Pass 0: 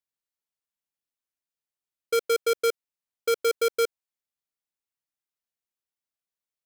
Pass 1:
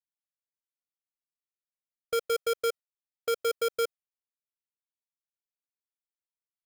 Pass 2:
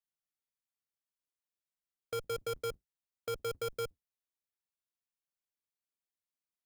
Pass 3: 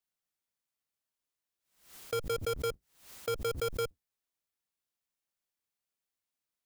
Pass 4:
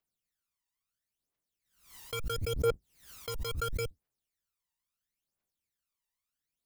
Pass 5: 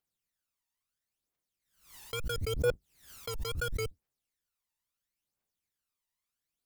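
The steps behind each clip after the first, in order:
gate with hold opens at -25 dBFS; comb 1.6 ms, depth 73%; trim -6 dB
octave divider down 2 oct, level -4 dB; waveshaping leveller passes 1; peak limiter -29.5 dBFS, peak gain reduction 8.5 dB; trim -1 dB
swell ahead of each attack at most 110 dB/s; trim +3.5 dB
phaser 0.74 Hz, delay 1.1 ms, feedback 72%; trim -3 dB
wow and flutter 83 cents

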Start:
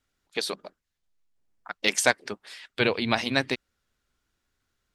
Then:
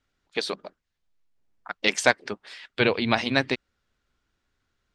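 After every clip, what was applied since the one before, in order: distance through air 75 m; trim +2.5 dB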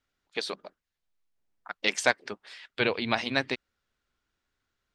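bass shelf 340 Hz -4.5 dB; trim -3.5 dB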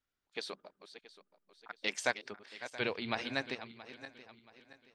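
backward echo that repeats 338 ms, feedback 58%, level -12.5 dB; trim -8.5 dB

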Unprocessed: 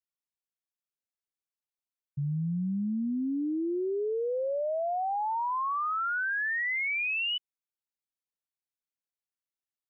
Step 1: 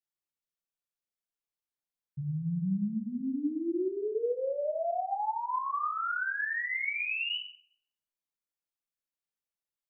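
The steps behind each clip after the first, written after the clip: simulated room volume 140 m³, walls mixed, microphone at 0.81 m; trim -5 dB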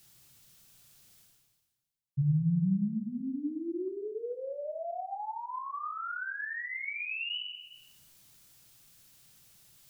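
ten-band graphic EQ 125 Hz +11 dB, 250 Hz -3 dB, 500 Hz -7 dB, 1 kHz -6 dB, 2 kHz -5 dB; reverse; upward compressor, threshold -33 dBFS; reverse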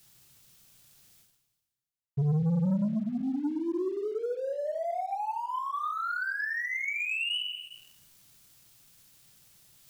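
waveshaping leveller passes 2; trim -2 dB

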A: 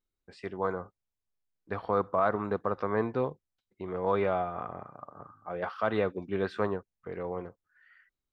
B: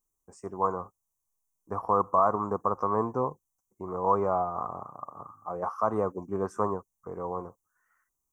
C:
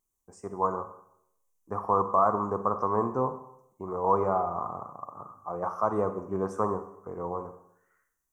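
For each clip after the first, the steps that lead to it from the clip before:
FFT filter 600 Hz 0 dB, 1.1 kHz +10 dB, 1.6 kHz -13 dB, 4.1 kHz -30 dB, 6 kHz +13 dB
wow and flutter 29 cents; on a send at -9 dB: reverberation RT60 0.75 s, pre-delay 31 ms

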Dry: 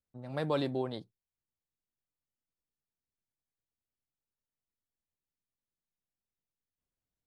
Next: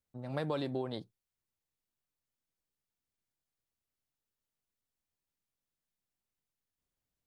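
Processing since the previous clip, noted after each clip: compression, threshold -33 dBFS, peak gain reduction 7.5 dB; trim +2 dB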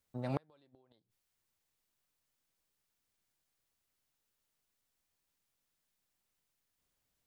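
bass shelf 480 Hz -4.5 dB; inverted gate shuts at -30 dBFS, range -38 dB; trim +7.5 dB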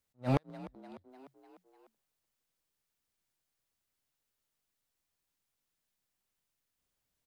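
waveshaping leveller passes 2; frequency-shifting echo 299 ms, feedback 58%, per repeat +44 Hz, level -17.5 dB; attacks held to a fixed rise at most 350 dB/s; trim +2 dB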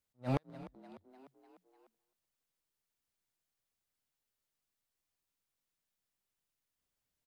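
delay 262 ms -22.5 dB; trim -4 dB

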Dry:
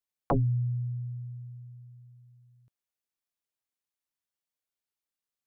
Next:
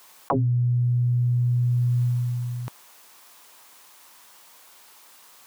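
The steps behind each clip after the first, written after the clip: high-pass 350 Hz 6 dB/octave; peaking EQ 1 kHz +8.5 dB 0.72 oct; level flattener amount 100%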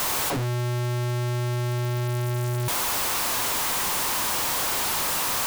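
one-bit comparator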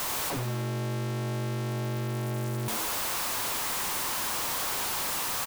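frequency-shifting echo 84 ms, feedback 61%, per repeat +98 Hz, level -9.5 dB; trim -6 dB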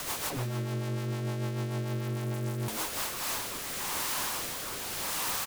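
rotary cabinet horn 6.7 Hz, later 0.85 Hz, at 2.62 s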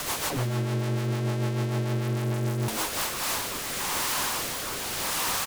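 loudspeaker Doppler distortion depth 0.21 ms; trim +5.5 dB

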